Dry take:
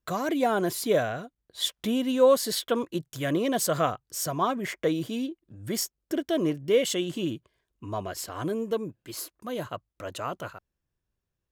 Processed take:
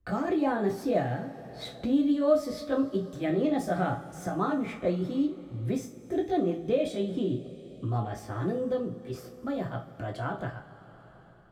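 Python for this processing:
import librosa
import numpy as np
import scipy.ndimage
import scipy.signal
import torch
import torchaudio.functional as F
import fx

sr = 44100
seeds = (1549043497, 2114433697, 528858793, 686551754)

y = fx.pitch_heads(x, sr, semitones=2.0)
y = fx.riaa(y, sr, side='playback')
y = fx.rev_double_slope(y, sr, seeds[0], early_s=0.29, late_s=3.1, knee_db=-22, drr_db=0.5)
y = fx.band_squash(y, sr, depth_pct=40)
y = y * 10.0 ** (-6.5 / 20.0)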